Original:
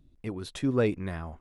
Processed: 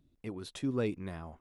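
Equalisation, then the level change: low shelf 73 Hz -10.5 dB; dynamic EQ 610 Hz, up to -5 dB, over -38 dBFS, Q 1.3; dynamic EQ 1700 Hz, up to -5 dB, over -49 dBFS, Q 1.4; -4.0 dB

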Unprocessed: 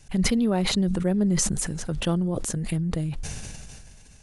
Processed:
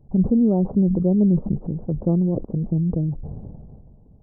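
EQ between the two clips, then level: Gaussian blur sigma 14 samples; low shelf 72 Hz -10.5 dB; +7.5 dB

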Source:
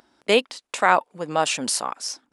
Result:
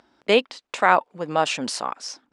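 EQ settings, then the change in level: air absorption 86 m; +1.0 dB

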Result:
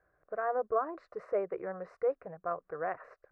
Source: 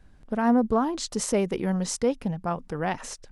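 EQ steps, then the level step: band-pass 910 Hz, Q 1.5; air absorption 430 m; fixed phaser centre 880 Hz, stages 6; +3.5 dB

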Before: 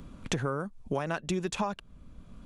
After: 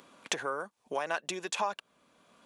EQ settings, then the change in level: HPF 590 Hz 12 dB/oct; notch 1300 Hz, Q 14; +2.5 dB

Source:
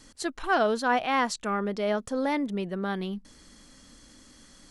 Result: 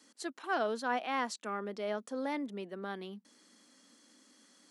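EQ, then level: steep high-pass 210 Hz 36 dB/oct; -8.5 dB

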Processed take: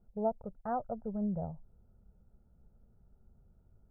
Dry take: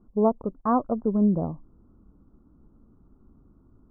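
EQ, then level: dynamic EQ 410 Hz, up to -6 dB, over -37 dBFS, Q 1.2; fixed phaser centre 1100 Hz, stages 6; -4.5 dB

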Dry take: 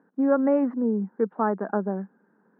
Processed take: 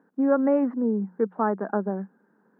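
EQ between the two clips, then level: notches 60/120/180 Hz; 0.0 dB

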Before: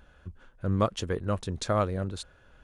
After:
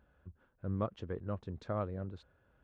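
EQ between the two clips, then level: HPF 60 Hz; tape spacing loss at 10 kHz 35 dB; -8.0 dB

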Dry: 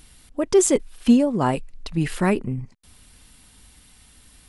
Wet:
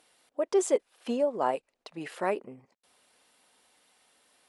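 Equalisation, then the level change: band-pass 560 Hz, Q 1.7; tilt +4.5 dB/oct; +1.5 dB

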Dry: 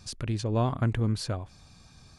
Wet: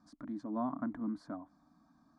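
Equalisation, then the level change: double band-pass 490 Hz, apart 1.4 oct; fixed phaser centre 540 Hz, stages 8; +7.5 dB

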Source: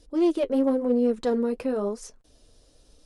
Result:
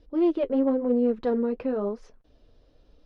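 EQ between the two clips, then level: air absorption 300 m; 0.0 dB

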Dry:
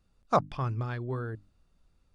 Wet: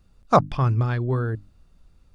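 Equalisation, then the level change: low shelf 200 Hz +5 dB; +7.5 dB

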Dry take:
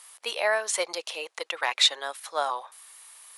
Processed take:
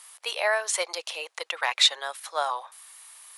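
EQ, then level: HPF 510 Hz 12 dB/oct; +1.0 dB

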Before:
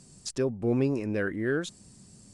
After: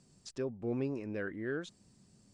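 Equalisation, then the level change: air absorption 73 m; low shelf 150 Hz -4 dB; -8.0 dB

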